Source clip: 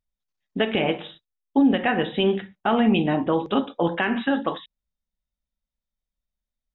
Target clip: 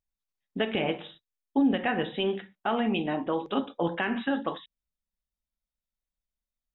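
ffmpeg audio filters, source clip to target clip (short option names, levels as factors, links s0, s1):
-filter_complex "[0:a]asettb=1/sr,asplit=3[s0][s1][s2];[s0]atrim=end=2.164[s3];[s1]atrim=start=2.16:end=3.57,asetpts=PTS-STARTPTS,afade=t=in:d=0.004:c=qsin,afade=t=out:st=1.406:d=0.004:c=qsin,equalizer=f=81:w=0.61:g=-10.5[s4];[s2]atrim=start=3.566[s5];[s3][s4]acrossfade=d=0.004:c1=hsin:c2=qsin[s6];[s6][s5]acrossfade=d=0.004:c1=qsin:c2=hsin,volume=0.531"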